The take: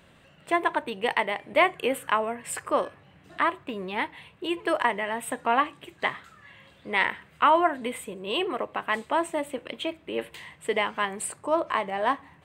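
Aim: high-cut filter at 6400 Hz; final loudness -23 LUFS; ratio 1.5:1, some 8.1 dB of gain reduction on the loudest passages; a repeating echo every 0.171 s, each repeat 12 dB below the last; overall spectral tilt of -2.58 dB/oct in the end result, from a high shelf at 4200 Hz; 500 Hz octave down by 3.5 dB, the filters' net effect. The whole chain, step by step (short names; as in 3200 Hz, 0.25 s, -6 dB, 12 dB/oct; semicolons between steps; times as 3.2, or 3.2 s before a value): LPF 6400 Hz; bell 500 Hz -5 dB; high shelf 4200 Hz +5 dB; compressor 1.5:1, threshold -39 dBFS; feedback echo 0.171 s, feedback 25%, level -12 dB; gain +11.5 dB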